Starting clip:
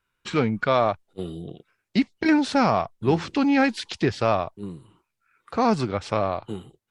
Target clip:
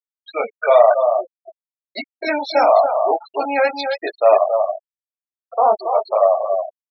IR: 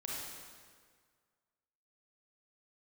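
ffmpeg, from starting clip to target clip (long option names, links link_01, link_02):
-filter_complex "[0:a]flanger=delay=16.5:depth=4.9:speed=1,highpass=frequency=630:width_type=q:width=4.9,asplit=2[link_01][link_02];[link_02]asoftclip=type=tanh:threshold=-14.5dB,volume=-6dB[link_03];[link_01][link_03]amix=inputs=2:normalize=0,aemphasis=mode=production:type=75kf,aecho=1:1:276:0.501,afftfilt=real='re*gte(hypot(re,im),0.141)':imag='im*gte(hypot(re,im),0.141)':win_size=1024:overlap=0.75"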